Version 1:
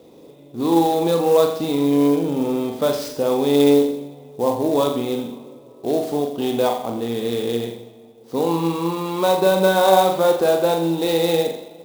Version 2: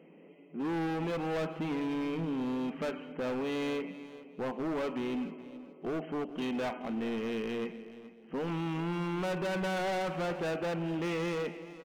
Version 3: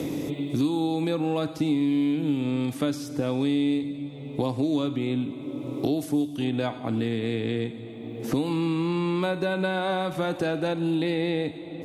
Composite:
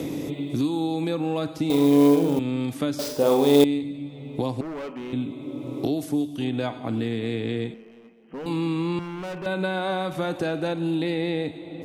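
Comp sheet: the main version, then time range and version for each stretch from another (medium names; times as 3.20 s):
3
1.70–2.39 s: from 1
2.99–3.64 s: from 1
4.61–5.13 s: from 2
7.74–8.46 s: from 2
8.99–9.46 s: from 2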